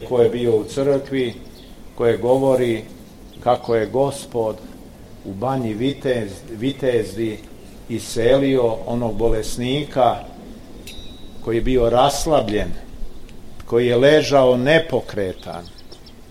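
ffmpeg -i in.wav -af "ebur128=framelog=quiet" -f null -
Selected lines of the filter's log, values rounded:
Integrated loudness:
  I:         -19.1 LUFS
  Threshold: -30.4 LUFS
Loudness range:
  LRA:         5.8 LU
  Threshold: -40.6 LUFS
  LRA low:   -23.6 LUFS
  LRA high:  -17.8 LUFS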